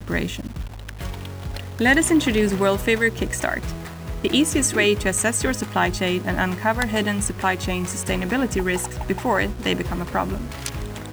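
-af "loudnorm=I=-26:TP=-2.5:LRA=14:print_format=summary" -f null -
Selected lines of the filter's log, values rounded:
Input Integrated:    -22.4 LUFS
Input True Peak:      -4.6 dBTP
Input LRA:             3.8 LU
Input Threshold:     -32.7 LUFS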